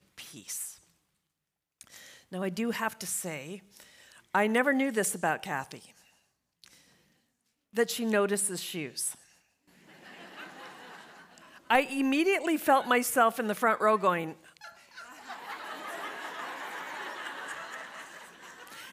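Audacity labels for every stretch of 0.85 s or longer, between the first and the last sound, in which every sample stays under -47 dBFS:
0.770000	1.810000	silence
6.740000	7.740000	silence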